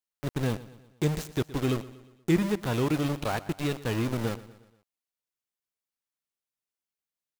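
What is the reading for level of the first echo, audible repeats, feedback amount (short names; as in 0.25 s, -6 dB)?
-17.5 dB, 3, 50%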